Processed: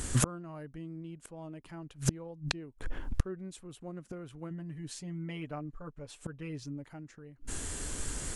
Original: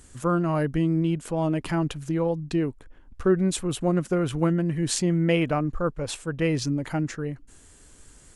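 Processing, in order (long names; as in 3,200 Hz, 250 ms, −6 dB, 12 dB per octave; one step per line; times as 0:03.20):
0:04.50–0:06.84: comb filter 6.9 ms, depth 90%
gate with flip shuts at −26 dBFS, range −34 dB
level +14 dB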